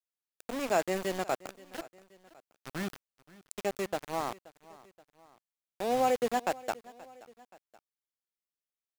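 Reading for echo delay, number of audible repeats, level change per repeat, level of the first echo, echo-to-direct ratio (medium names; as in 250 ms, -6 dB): 527 ms, 2, -5.5 dB, -21.0 dB, -20.0 dB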